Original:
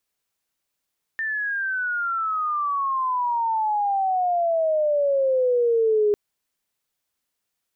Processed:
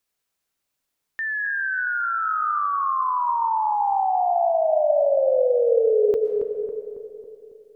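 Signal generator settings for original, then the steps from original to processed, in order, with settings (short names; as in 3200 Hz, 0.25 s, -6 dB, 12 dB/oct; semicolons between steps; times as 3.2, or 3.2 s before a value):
chirp logarithmic 1800 Hz -> 410 Hz -23.5 dBFS -> -16 dBFS 4.95 s
on a send: darkening echo 0.275 s, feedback 56%, low-pass 1300 Hz, level -7.5 dB; on the sum: digital reverb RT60 2.6 s, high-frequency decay 0.4×, pre-delay 80 ms, DRR 8 dB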